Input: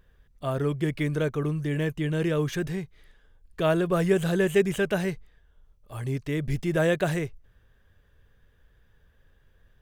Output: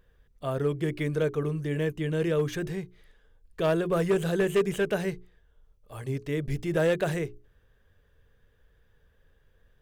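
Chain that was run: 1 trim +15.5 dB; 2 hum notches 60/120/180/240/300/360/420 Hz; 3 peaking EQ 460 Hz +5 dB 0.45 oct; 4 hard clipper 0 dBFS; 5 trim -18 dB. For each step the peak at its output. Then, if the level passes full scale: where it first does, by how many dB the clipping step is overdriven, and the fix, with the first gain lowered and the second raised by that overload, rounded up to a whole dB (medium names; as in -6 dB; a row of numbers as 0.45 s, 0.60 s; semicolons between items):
+5.0 dBFS, +4.0 dBFS, +6.5 dBFS, 0.0 dBFS, -18.0 dBFS; step 1, 6.5 dB; step 1 +8.5 dB, step 5 -11 dB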